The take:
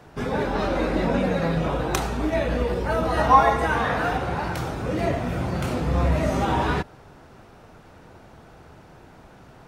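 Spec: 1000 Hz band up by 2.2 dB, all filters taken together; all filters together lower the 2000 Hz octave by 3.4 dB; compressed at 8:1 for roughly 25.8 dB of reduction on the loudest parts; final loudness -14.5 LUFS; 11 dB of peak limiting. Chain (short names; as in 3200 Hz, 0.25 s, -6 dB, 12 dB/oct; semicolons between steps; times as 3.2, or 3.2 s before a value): bell 1000 Hz +4 dB; bell 2000 Hz -6.5 dB; compressor 8:1, threshold -35 dBFS; gain +28 dB; limiter -4.5 dBFS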